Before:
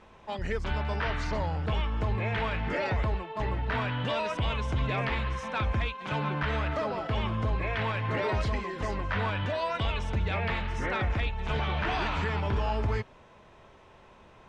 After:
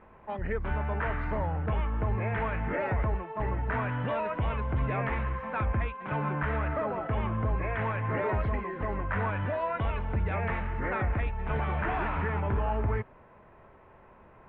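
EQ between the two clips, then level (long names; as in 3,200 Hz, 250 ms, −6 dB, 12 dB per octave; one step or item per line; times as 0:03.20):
low-pass filter 2,100 Hz 24 dB per octave
0.0 dB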